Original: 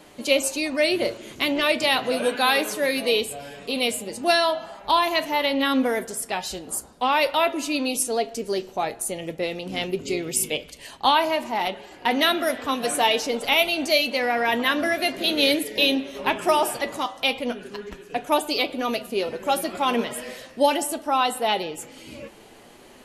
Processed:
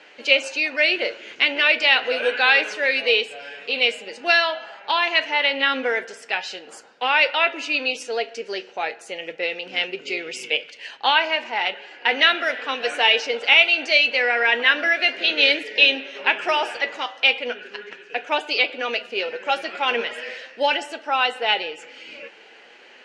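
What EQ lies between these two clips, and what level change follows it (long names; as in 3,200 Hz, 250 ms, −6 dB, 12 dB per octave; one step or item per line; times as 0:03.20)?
bass and treble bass −11 dB, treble +10 dB
loudspeaker in its box 160–5,100 Hz, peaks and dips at 480 Hz +8 dB, 830 Hz +5 dB, 1,400 Hz +4 dB, 3,000 Hz +5 dB
flat-topped bell 2,000 Hz +11 dB 1.1 octaves
−5.5 dB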